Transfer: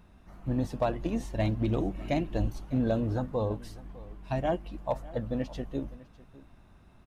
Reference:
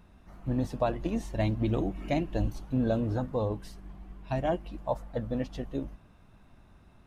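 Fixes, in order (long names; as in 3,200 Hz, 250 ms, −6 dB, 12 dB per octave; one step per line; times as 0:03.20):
clipped peaks rebuilt −19 dBFS
echo removal 603 ms −20 dB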